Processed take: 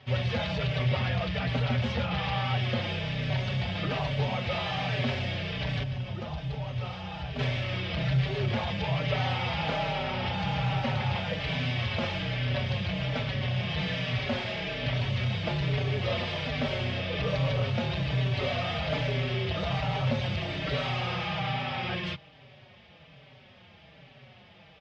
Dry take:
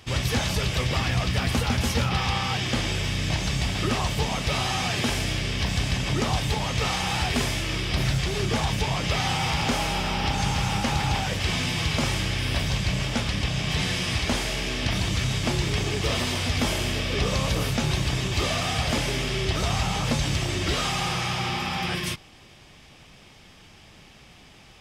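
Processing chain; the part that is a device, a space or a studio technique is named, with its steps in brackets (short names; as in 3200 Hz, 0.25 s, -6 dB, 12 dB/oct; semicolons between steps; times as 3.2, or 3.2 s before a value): 5.83–7.39 graphic EQ 125/250/500/1000/2000/4000/8000 Hz -4/-6/-7/-5/-10/-7/-8 dB; barber-pole flanger into a guitar amplifier (endless flanger 4.8 ms -1.2 Hz; soft clip -21.5 dBFS, distortion -18 dB; speaker cabinet 90–3800 Hz, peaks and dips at 130 Hz +7 dB, 320 Hz -8 dB, 580 Hz +8 dB, 1100 Hz -3 dB)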